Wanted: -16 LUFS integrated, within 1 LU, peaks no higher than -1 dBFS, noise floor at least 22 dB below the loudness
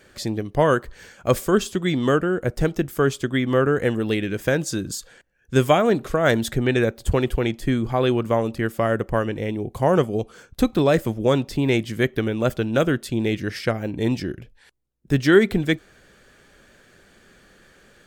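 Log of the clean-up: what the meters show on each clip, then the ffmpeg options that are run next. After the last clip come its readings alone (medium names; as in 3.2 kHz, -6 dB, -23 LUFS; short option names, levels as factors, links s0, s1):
loudness -22.0 LUFS; peak level -3.0 dBFS; loudness target -16.0 LUFS
-> -af "volume=2,alimiter=limit=0.891:level=0:latency=1"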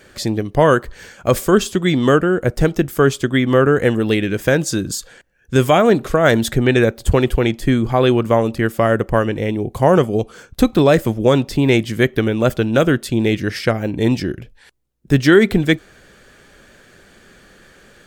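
loudness -16.5 LUFS; peak level -1.0 dBFS; noise floor -49 dBFS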